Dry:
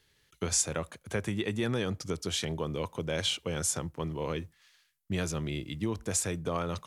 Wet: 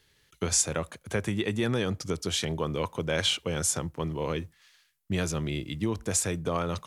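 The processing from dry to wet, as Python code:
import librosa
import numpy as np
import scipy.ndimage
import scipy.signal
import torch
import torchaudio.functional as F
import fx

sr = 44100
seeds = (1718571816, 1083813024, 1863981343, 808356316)

y = fx.dynamic_eq(x, sr, hz=1400.0, q=0.87, threshold_db=-43.0, ratio=4.0, max_db=4, at=(2.61, 3.43))
y = y * 10.0 ** (3.0 / 20.0)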